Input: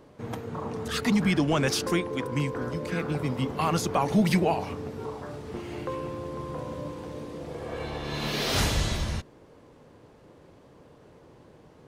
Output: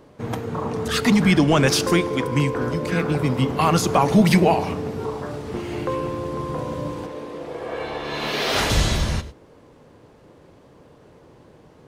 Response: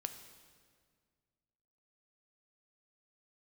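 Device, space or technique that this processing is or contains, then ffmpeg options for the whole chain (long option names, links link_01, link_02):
keyed gated reverb: -filter_complex "[0:a]asplit=3[link_01][link_02][link_03];[1:a]atrim=start_sample=2205[link_04];[link_02][link_04]afir=irnorm=-1:irlink=0[link_05];[link_03]apad=whole_len=523727[link_06];[link_05][link_06]sidechaingate=range=-33dB:threshold=-42dB:ratio=16:detection=peak,volume=-2.5dB[link_07];[link_01][link_07]amix=inputs=2:normalize=0,asettb=1/sr,asplit=3[link_08][link_09][link_10];[link_08]atrim=end=7.064[link_11];[link_09]atrim=start=7.06:end=8.7,asetpts=PTS-STARTPTS,afade=type=in:duration=0.004:curve=qsin,afade=type=out:start_time=1.636:duration=0.004:curve=qsin,bass=frequency=250:gain=-12,treble=frequency=4000:gain=-7[link_12];[link_10]atrim=start=8.696[link_13];[link_11][link_12]acrossfade=duration=0.004:curve1=hsin:curve2=qsin[link_14];[link_14][link_13]acrossfade=duration=0.004:curve1=qsin:curve2=hsin,volume=3.5dB"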